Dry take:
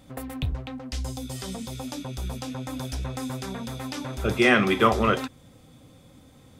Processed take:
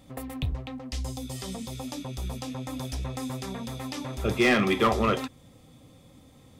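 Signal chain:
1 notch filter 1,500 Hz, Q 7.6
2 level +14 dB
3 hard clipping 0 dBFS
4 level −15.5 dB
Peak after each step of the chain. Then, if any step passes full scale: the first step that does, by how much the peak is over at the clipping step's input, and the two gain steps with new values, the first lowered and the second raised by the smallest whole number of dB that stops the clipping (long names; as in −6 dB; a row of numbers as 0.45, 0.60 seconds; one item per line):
−5.0, +9.0, 0.0, −15.5 dBFS
step 2, 9.0 dB
step 2 +5 dB, step 4 −6.5 dB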